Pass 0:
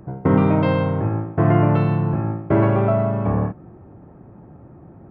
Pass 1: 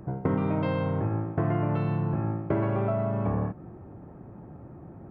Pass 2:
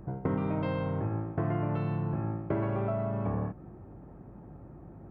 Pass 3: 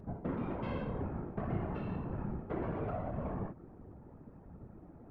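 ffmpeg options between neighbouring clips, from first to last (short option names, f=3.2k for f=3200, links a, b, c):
-af "acompressor=threshold=-23dB:ratio=4,volume=-1.5dB"
-af "aeval=exprs='val(0)+0.00316*(sin(2*PI*50*n/s)+sin(2*PI*2*50*n/s)/2+sin(2*PI*3*50*n/s)/3+sin(2*PI*4*50*n/s)/4+sin(2*PI*5*50*n/s)/5)':c=same,volume=-4dB"
-af "aphaser=in_gain=1:out_gain=1:delay=4.8:decay=0.26:speed=1.3:type=triangular,asoftclip=type=tanh:threshold=-25dB,afftfilt=real='hypot(re,im)*cos(2*PI*random(0))':imag='hypot(re,im)*sin(2*PI*random(1))':win_size=512:overlap=0.75,volume=1dB"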